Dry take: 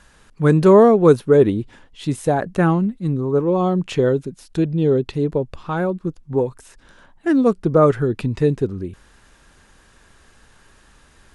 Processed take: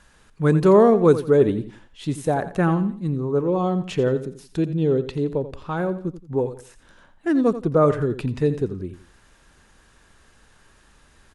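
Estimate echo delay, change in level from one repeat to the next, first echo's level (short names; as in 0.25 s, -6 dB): 86 ms, -10.0 dB, -13.0 dB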